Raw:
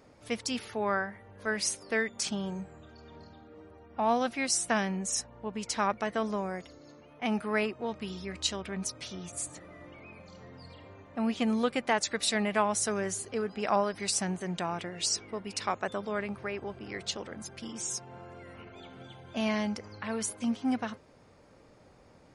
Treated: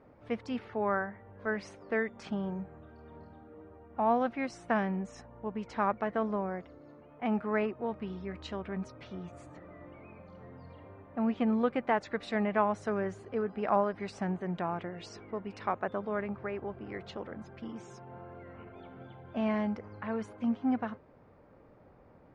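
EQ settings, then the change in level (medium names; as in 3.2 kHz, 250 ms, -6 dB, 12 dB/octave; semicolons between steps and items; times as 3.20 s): low-pass 1.6 kHz 12 dB/octave; 0.0 dB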